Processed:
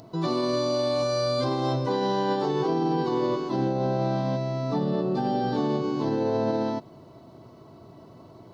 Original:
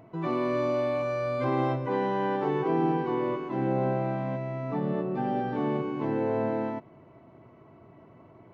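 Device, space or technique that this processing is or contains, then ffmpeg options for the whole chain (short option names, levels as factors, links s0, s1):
over-bright horn tweeter: -af "highshelf=f=3200:t=q:w=3:g=11.5,alimiter=limit=0.0794:level=0:latency=1:release=49,volume=1.78"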